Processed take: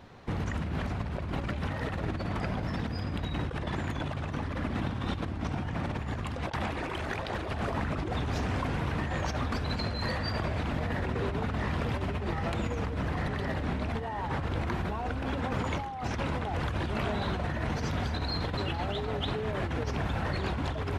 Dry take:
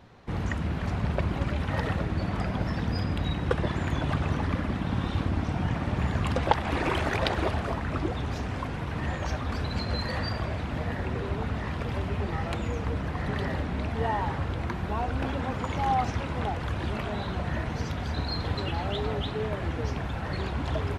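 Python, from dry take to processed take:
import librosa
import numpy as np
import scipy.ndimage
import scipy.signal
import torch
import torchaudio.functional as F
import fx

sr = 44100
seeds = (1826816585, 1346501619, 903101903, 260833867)

y = fx.hum_notches(x, sr, base_hz=60, count=3)
y = fx.over_compress(y, sr, threshold_db=-32.0, ratio=-1.0)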